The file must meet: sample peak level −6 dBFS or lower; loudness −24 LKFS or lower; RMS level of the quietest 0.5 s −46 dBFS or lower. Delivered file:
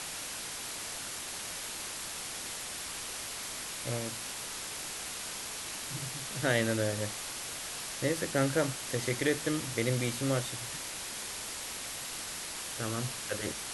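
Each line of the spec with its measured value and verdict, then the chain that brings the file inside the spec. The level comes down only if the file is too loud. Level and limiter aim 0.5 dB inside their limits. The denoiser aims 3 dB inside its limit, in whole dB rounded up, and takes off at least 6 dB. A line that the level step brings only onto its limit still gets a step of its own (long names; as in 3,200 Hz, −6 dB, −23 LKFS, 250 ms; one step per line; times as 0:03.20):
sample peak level −15.0 dBFS: in spec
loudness −34.5 LKFS: in spec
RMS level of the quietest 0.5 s −40 dBFS: out of spec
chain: broadband denoise 9 dB, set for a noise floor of −40 dBFS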